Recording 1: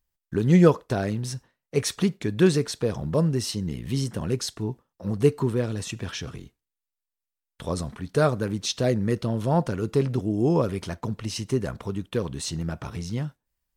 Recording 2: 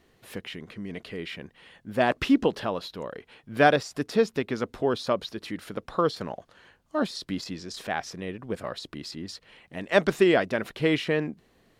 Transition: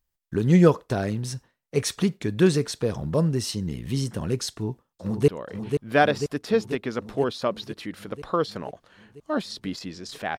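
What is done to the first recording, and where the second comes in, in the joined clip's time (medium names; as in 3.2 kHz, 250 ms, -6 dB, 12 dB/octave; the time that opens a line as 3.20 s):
recording 1
4.50–5.28 s: echo throw 490 ms, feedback 70%, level -6 dB
5.28 s: go over to recording 2 from 2.93 s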